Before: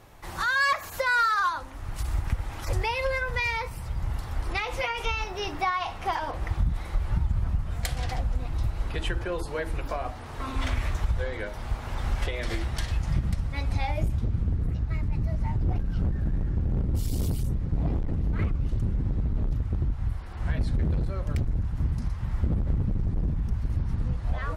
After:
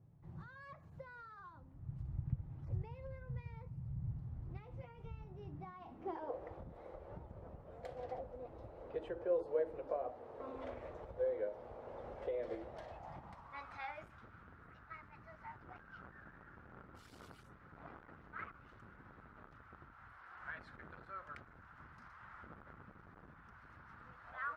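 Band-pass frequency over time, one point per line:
band-pass, Q 3.9
5.54 s 140 Hz
6.36 s 510 Hz
12.63 s 510 Hz
13.8 s 1400 Hz

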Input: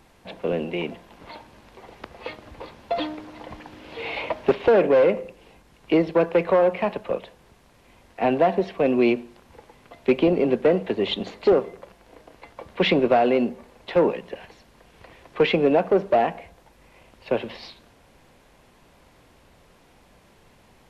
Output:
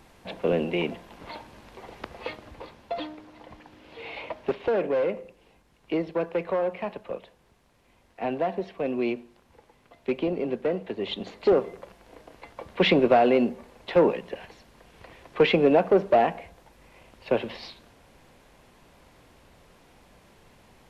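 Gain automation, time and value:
2.13 s +1 dB
3.14 s -8 dB
10.93 s -8 dB
11.74 s -0.5 dB

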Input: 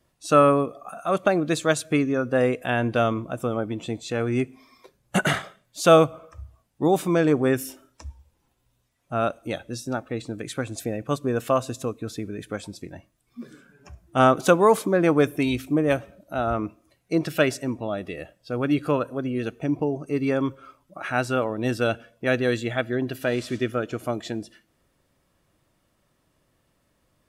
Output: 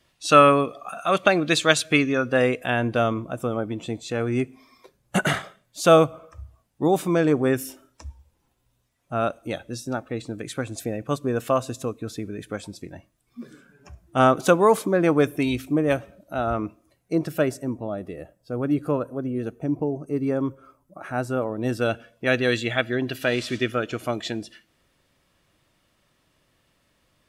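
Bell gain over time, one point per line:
bell 3100 Hz 2.1 oct
2.19 s +11 dB
2.88 s -0.5 dB
16.66 s -0.5 dB
17.58 s -12.5 dB
21.37 s -12.5 dB
21.89 s -1 dB
22.53 s +7 dB

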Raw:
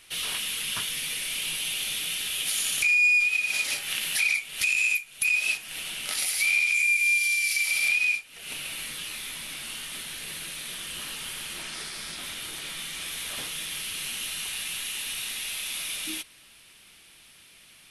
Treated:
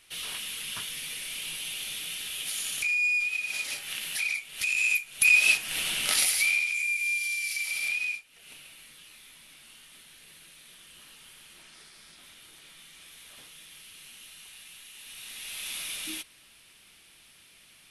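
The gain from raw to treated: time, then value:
4.54 s -5.5 dB
5.32 s +5 dB
6.17 s +5 dB
6.72 s -6 dB
8 s -6 dB
8.76 s -15.5 dB
14.92 s -15.5 dB
15.68 s -3 dB

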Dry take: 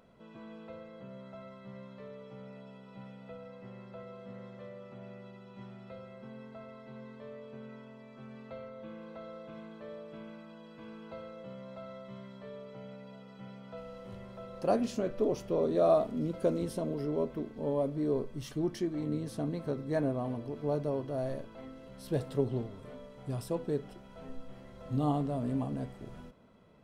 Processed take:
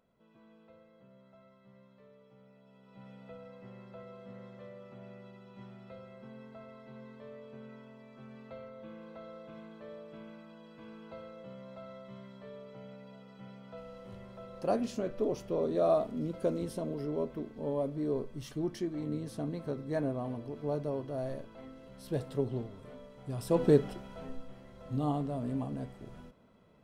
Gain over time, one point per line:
2.6 s -12 dB
3.14 s -2 dB
23.35 s -2 dB
23.65 s +11 dB
24.58 s -2 dB

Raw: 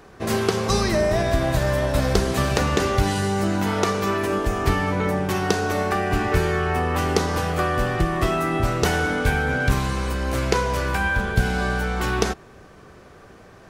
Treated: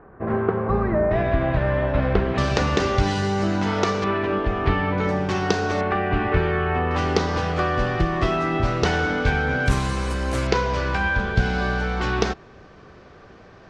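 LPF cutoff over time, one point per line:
LPF 24 dB/oct
1600 Hz
from 1.11 s 2700 Hz
from 2.38 s 6000 Hz
from 4.04 s 3500 Hz
from 4.98 s 5900 Hz
from 5.81 s 3200 Hz
from 6.91 s 5500 Hz
from 9.66 s 10000 Hz
from 10.47 s 5500 Hz

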